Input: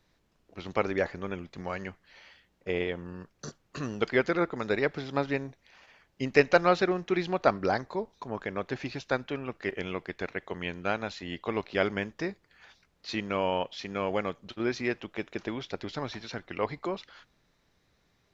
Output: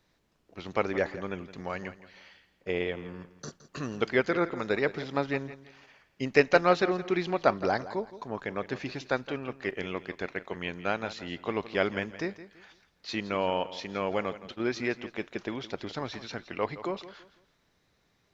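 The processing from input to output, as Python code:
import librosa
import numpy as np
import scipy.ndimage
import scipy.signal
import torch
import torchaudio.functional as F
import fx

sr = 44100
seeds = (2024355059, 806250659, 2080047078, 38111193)

y = fx.low_shelf(x, sr, hz=77.0, db=-5.5)
y = fx.echo_feedback(y, sr, ms=167, feedback_pct=30, wet_db=-15)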